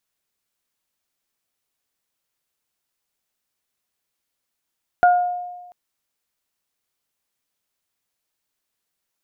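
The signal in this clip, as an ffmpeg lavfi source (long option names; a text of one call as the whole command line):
ffmpeg -f lavfi -i "aevalsrc='0.355*pow(10,-3*t/1.25)*sin(2*PI*714*t)+0.158*pow(10,-3*t/0.44)*sin(2*PI*1428*t)':duration=0.69:sample_rate=44100" out.wav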